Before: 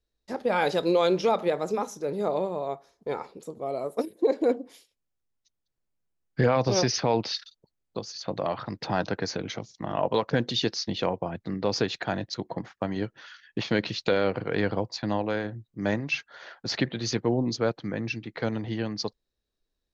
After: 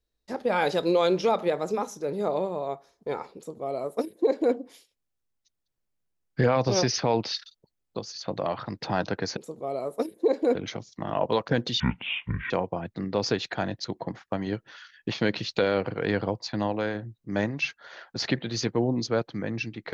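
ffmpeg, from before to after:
ffmpeg -i in.wav -filter_complex "[0:a]asplit=5[link_01][link_02][link_03][link_04][link_05];[link_01]atrim=end=9.372[link_06];[link_02]atrim=start=3.358:end=4.542[link_07];[link_03]atrim=start=9.368:end=10.624[link_08];[link_04]atrim=start=10.62:end=11,asetpts=PTS-STARTPTS,asetrate=23814,aresample=44100,atrim=end_sample=31033,asetpts=PTS-STARTPTS[link_09];[link_05]atrim=start=10.996[link_10];[link_06][link_07]acrossfade=duration=0.004:curve1=hsin:curve2=hsin[link_11];[link_11][link_08]acrossfade=duration=0.004:curve1=hsin:curve2=hsin[link_12];[link_12][link_09]acrossfade=duration=0.004:curve1=hsin:curve2=hsin[link_13];[link_13][link_10]acrossfade=duration=0.004:curve1=hsin:curve2=hsin" out.wav

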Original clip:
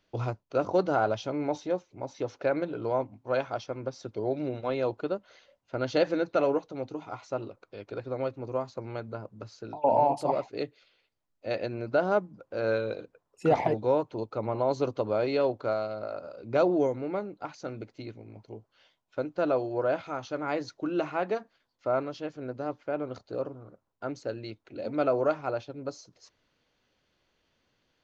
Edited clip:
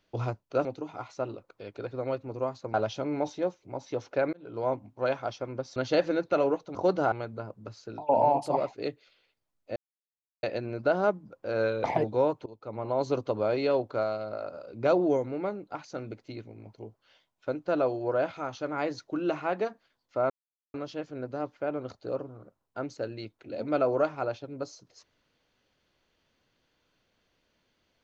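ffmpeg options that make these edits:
ffmpeg -i in.wav -filter_complex "[0:a]asplit=11[link_01][link_02][link_03][link_04][link_05][link_06][link_07][link_08][link_09][link_10][link_11];[link_01]atrim=end=0.652[link_12];[link_02]atrim=start=6.778:end=8.872[link_13];[link_03]atrim=start=1.018:end=2.61,asetpts=PTS-STARTPTS,afade=type=out:start_time=1.588:duration=0.004:curve=hsin[link_14];[link_04]atrim=start=2.61:end=4.042,asetpts=PTS-STARTPTS,afade=type=in:duration=0.37[link_15];[link_05]atrim=start=5.788:end=6.782[link_16];[link_06]atrim=start=0.648:end=1.022[link_17];[link_07]atrim=start=8.868:end=11.51,asetpts=PTS-STARTPTS,afade=type=out:start_time=2.638:duration=0.004:curve=hsin,apad=pad_dur=0.67[link_18];[link_08]atrim=start=11.51:end=12.922,asetpts=PTS-STARTPTS,afade=type=in:duration=0.004:curve=hsin[link_19];[link_09]atrim=start=13.538:end=14.16,asetpts=PTS-STARTPTS,afade=type=out:start_time=0.618:duration=0.004:curve=hsin:silence=0.112202[link_20];[link_10]atrim=start=14.16:end=22,asetpts=PTS-STARTPTS,afade=type=in:duration=0.61:silence=0.112202,afade=type=out:start_time=7.836:duration=0.004:curve=hsin,apad=pad_dur=0.44[link_21];[link_11]atrim=start=22,asetpts=PTS-STARTPTS,afade=type=in:duration=0.004:curve=hsin[link_22];[link_12][link_13]acrossfade=duration=0.004:curve1=hsin:curve2=hsin[link_23];[link_14][link_15]concat=n=2:v=0:a=1[link_24];[link_23][link_24]acrossfade=duration=0.004:curve1=hsin:curve2=hsin[link_25];[link_25][link_16]acrossfade=duration=0.004:curve1=hsin:curve2=hsin[link_26];[link_26][link_17]acrossfade=duration=0.004:curve1=hsin:curve2=hsin[link_27];[link_18][link_19]concat=n=2:v=0:a=1[link_28];[link_27][link_28]acrossfade=duration=0.004:curve1=hsin:curve2=hsin[link_29];[link_20][link_21][link_22]concat=n=3:v=0:a=1[link_30];[link_29][link_30]acrossfade=duration=0.004:curve1=hsin:curve2=hsin" out.wav

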